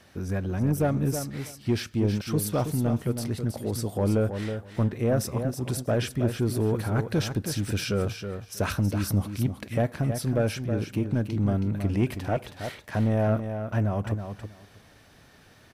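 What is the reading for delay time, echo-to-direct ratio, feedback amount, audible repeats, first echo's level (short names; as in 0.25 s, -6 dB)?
0.321 s, -8.0 dB, 16%, 2, -8.0 dB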